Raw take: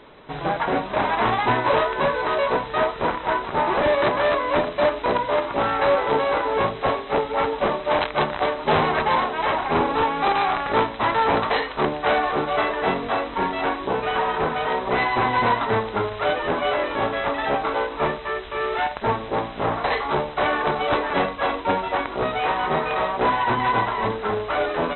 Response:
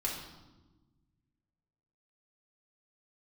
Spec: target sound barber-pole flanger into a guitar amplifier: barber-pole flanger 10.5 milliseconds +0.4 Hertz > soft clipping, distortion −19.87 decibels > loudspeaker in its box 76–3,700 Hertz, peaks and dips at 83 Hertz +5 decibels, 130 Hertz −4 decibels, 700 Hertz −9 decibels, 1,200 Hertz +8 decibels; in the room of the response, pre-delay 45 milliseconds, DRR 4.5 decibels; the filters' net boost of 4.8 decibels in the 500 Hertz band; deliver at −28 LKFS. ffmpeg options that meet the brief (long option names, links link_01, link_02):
-filter_complex "[0:a]equalizer=frequency=500:width_type=o:gain=8,asplit=2[link_01][link_02];[1:a]atrim=start_sample=2205,adelay=45[link_03];[link_02][link_03]afir=irnorm=-1:irlink=0,volume=-8.5dB[link_04];[link_01][link_04]amix=inputs=2:normalize=0,asplit=2[link_05][link_06];[link_06]adelay=10.5,afreqshift=0.4[link_07];[link_05][link_07]amix=inputs=2:normalize=1,asoftclip=threshold=-10.5dB,highpass=76,equalizer=frequency=83:width_type=q:width=4:gain=5,equalizer=frequency=130:width_type=q:width=4:gain=-4,equalizer=frequency=700:width_type=q:width=4:gain=-9,equalizer=frequency=1200:width_type=q:width=4:gain=8,lowpass=frequency=3700:width=0.5412,lowpass=frequency=3700:width=1.3066,volume=-6.5dB"